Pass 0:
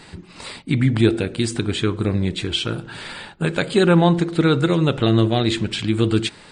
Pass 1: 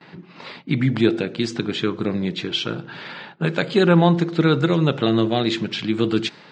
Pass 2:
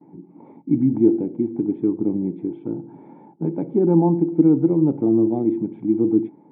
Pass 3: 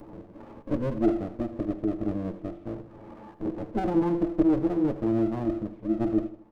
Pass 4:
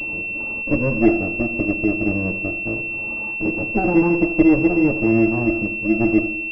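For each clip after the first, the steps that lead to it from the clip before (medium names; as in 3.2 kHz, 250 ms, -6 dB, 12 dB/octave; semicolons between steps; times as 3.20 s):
elliptic band-pass 140–6100 Hz, stop band 40 dB; gate with hold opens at -37 dBFS; level-controlled noise filter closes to 2.8 kHz, open at -16 dBFS
cascade formant filter u; trim +8 dB
comb filter that takes the minimum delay 9.3 ms; upward compressor, threshold -28 dBFS; feedback delay 79 ms, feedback 42%, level -15 dB; trim -7 dB
reverberation RT60 1.3 s, pre-delay 36 ms, DRR 14.5 dB; class-D stage that switches slowly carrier 2.7 kHz; trim +8 dB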